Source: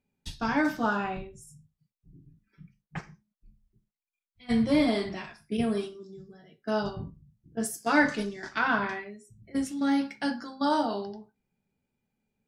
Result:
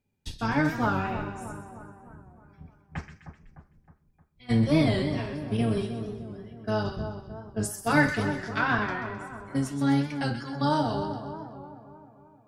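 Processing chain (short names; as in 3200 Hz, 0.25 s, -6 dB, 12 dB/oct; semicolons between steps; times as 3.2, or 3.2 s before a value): octaver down 1 oct, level -1 dB; split-band echo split 1400 Hz, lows 0.308 s, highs 0.127 s, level -9 dB; record warp 45 rpm, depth 100 cents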